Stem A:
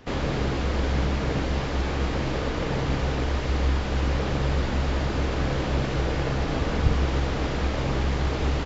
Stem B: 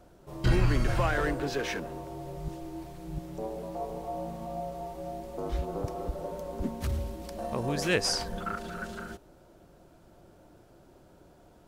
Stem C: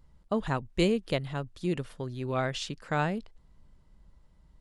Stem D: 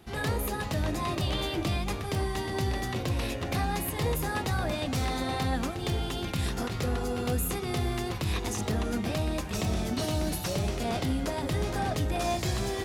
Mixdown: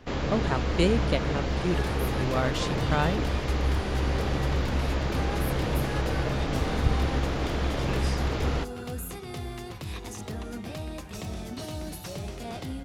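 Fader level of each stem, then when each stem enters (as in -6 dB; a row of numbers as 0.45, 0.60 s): -2.5, -13.5, +1.5, -6.5 dB; 0.00, 0.00, 0.00, 1.60 s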